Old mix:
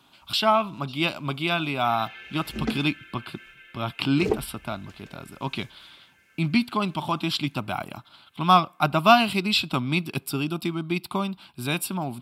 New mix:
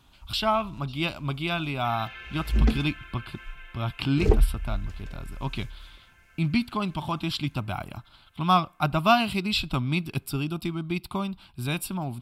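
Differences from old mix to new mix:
speech -4.0 dB; first sound: remove Butterworth band-stop 890 Hz, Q 1; master: remove high-pass 180 Hz 12 dB/octave

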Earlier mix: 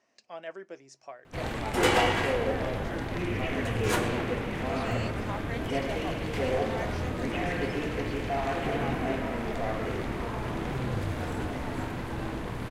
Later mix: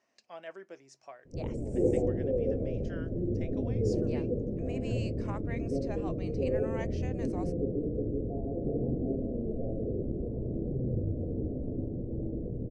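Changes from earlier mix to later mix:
speech -4.0 dB; background: add steep low-pass 550 Hz 48 dB/octave

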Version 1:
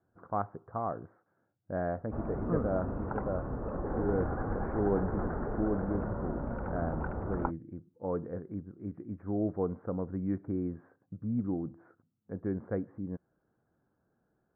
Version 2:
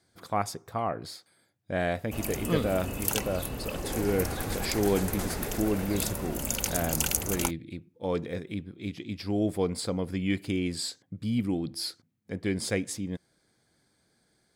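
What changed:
speech +4.0 dB; master: remove steep low-pass 1.5 kHz 48 dB/octave

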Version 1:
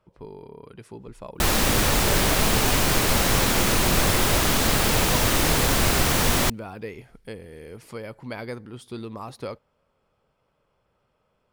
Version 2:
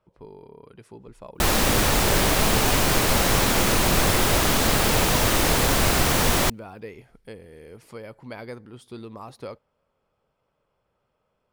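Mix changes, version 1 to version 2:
speech -4.5 dB; master: add peaking EQ 630 Hz +2 dB 2 oct

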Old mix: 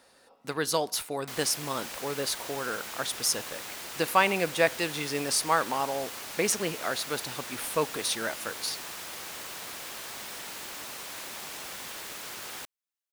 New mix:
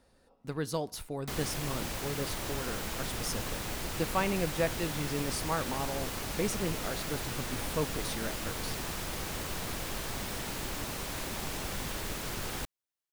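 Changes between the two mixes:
speech -11.5 dB; master: remove high-pass 880 Hz 6 dB/octave

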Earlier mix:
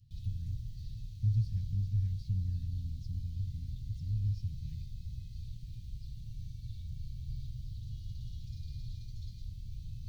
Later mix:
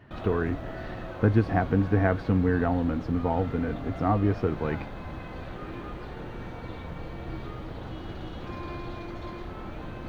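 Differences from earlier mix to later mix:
speech +4.5 dB; master: remove elliptic band-stop 120–4700 Hz, stop band 60 dB

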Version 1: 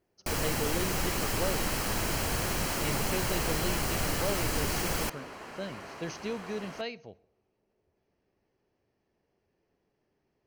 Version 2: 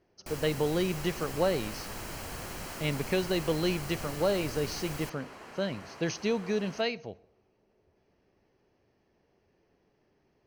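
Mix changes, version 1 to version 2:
speech +6.5 dB; first sound -10.0 dB; second sound -3.5 dB

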